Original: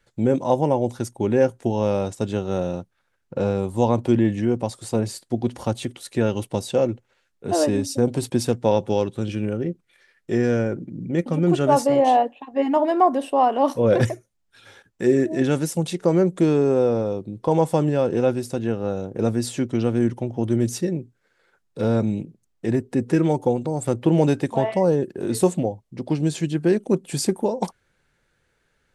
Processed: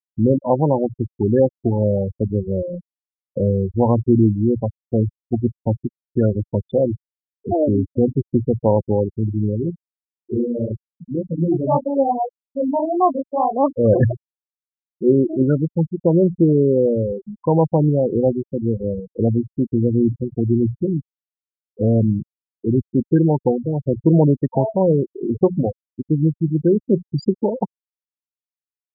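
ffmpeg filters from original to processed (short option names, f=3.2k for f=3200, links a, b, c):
-filter_complex "[0:a]asettb=1/sr,asplit=3[a][b][c];[a]atrim=end=9.704[d];[b]atrim=start=9.7:end=13.54,asetpts=PTS-STARTPTS,afade=t=in:d=0.004:c=qsin,afade=t=out:st=3.836:d=0.004:c=qsin,flanger=delay=16.5:depth=7.7:speed=1.8[e];[c]atrim=start=13.536[f];[d][e]acrossfade=d=0.004:c1=hsin:c2=qsin[g];[g][f]acrossfade=d=0.004:c1=qsin:c2=hsin,bandreject=f=60:t=h:w=6,bandreject=f=120:t=h:w=6,bandreject=f=180:t=h:w=6,afftfilt=real='re*gte(hypot(re,im),0.2)':imag='im*gte(hypot(re,im),0.2)':win_size=1024:overlap=0.75,lowshelf=f=130:g=11.5,volume=1.5dB"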